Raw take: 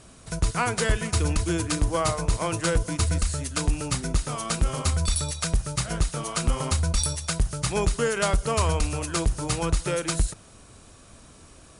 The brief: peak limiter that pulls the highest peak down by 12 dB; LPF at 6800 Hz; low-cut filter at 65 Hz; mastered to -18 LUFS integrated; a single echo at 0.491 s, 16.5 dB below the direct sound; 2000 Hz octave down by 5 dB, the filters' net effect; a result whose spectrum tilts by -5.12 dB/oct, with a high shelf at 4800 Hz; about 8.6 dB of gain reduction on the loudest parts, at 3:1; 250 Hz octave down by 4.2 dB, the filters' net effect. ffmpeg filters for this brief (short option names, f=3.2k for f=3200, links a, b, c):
-af "highpass=65,lowpass=6.8k,equalizer=f=250:t=o:g=-7,equalizer=f=2k:t=o:g=-5.5,highshelf=f=4.8k:g=-8,acompressor=threshold=-33dB:ratio=3,alimiter=level_in=8dB:limit=-24dB:level=0:latency=1,volume=-8dB,aecho=1:1:491:0.15,volume=23dB"